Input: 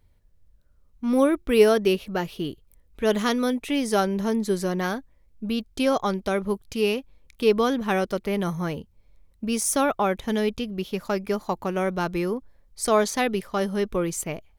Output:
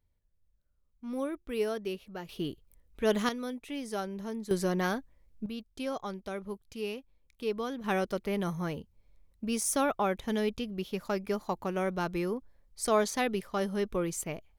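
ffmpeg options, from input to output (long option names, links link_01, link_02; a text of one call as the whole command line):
ffmpeg -i in.wav -af "asetnsamples=nb_out_samples=441:pad=0,asendcmd='2.29 volume volume -5dB;3.29 volume volume -13dB;4.51 volume volume -3.5dB;5.46 volume volume -13dB;7.84 volume volume -6dB',volume=-14.5dB" out.wav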